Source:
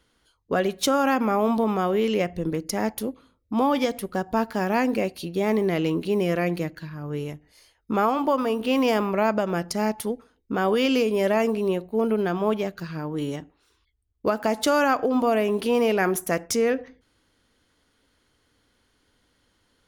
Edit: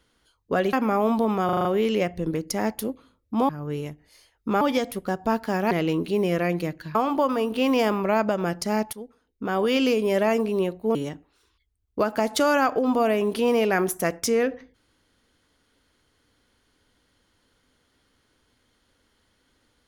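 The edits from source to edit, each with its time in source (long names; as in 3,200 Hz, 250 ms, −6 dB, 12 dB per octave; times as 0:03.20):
0:00.73–0:01.12: remove
0:01.84: stutter 0.04 s, 6 plays
0:04.78–0:05.68: remove
0:06.92–0:08.04: move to 0:03.68
0:10.02–0:10.85: fade in, from −13.5 dB
0:12.04–0:13.22: remove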